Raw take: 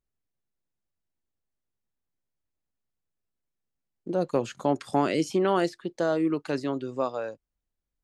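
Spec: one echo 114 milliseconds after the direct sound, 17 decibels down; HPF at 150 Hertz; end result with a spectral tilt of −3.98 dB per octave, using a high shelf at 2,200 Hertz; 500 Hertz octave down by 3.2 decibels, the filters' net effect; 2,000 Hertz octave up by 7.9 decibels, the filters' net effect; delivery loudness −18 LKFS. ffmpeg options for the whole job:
ffmpeg -i in.wav -af "highpass=150,equalizer=frequency=500:width_type=o:gain=-5,equalizer=frequency=2000:width_type=o:gain=7,highshelf=frequency=2200:gain=7.5,aecho=1:1:114:0.141,volume=10dB" out.wav

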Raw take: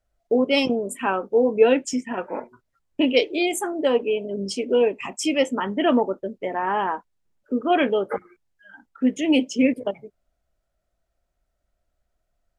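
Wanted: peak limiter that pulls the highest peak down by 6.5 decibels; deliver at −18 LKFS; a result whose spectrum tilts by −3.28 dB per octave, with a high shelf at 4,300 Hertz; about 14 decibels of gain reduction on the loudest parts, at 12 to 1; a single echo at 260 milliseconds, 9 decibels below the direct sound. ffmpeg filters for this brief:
ffmpeg -i in.wav -af "highshelf=frequency=4300:gain=8,acompressor=threshold=-24dB:ratio=12,alimiter=limit=-20.5dB:level=0:latency=1,aecho=1:1:260:0.355,volume=12.5dB" out.wav

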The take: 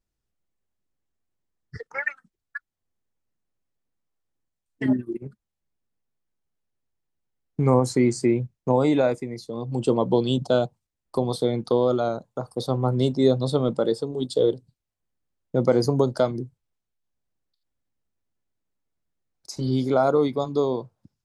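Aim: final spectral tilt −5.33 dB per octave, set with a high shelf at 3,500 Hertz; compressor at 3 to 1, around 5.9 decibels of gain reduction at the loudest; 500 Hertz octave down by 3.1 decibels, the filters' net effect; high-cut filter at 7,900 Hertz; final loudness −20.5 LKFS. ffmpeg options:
ffmpeg -i in.wav -af "lowpass=7900,equalizer=frequency=500:width_type=o:gain=-4,highshelf=frequency=3500:gain=8,acompressor=threshold=-24dB:ratio=3,volume=9dB" out.wav

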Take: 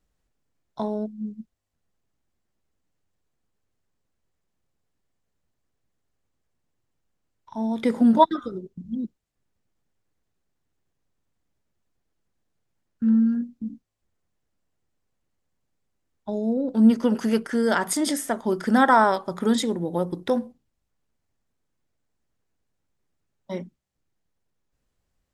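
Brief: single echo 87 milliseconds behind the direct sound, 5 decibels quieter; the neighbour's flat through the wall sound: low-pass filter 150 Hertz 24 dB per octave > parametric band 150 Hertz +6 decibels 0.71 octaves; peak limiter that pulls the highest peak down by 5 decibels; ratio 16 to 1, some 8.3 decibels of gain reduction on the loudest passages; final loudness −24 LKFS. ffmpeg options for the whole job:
ffmpeg -i in.wav -af "acompressor=threshold=-18dB:ratio=16,alimiter=limit=-16dB:level=0:latency=1,lowpass=frequency=150:width=0.5412,lowpass=frequency=150:width=1.3066,equalizer=frequency=150:width_type=o:width=0.71:gain=6,aecho=1:1:87:0.562,volume=16.5dB" out.wav

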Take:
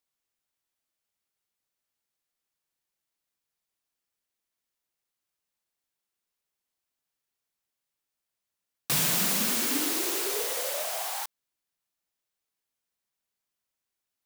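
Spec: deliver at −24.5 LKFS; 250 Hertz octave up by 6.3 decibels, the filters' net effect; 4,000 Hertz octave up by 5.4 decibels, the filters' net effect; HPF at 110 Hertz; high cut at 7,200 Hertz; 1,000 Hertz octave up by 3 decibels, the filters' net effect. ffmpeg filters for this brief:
ffmpeg -i in.wav -af "highpass=110,lowpass=7200,equalizer=frequency=250:width_type=o:gain=8,equalizer=frequency=1000:width_type=o:gain=3,equalizer=frequency=4000:width_type=o:gain=7,volume=2dB" out.wav

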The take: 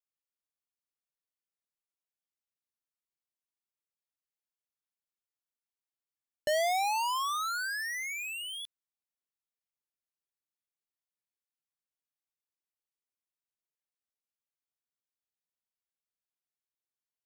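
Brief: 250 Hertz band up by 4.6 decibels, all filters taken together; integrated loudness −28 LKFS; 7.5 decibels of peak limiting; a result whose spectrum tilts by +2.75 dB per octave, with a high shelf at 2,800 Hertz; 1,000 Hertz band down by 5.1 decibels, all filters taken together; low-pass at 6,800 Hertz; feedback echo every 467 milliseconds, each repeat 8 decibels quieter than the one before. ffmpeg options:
ffmpeg -i in.wav -af "lowpass=6800,equalizer=frequency=250:width_type=o:gain=6.5,equalizer=frequency=1000:width_type=o:gain=-8,highshelf=frequency=2800:gain=4.5,alimiter=level_in=6.5dB:limit=-24dB:level=0:latency=1,volume=-6.5dB,aecho=1:1:467|934|1401|1868|2335:0.398|0.159|0.0637|0.0255|0.0102,volume=7dB" out.wav

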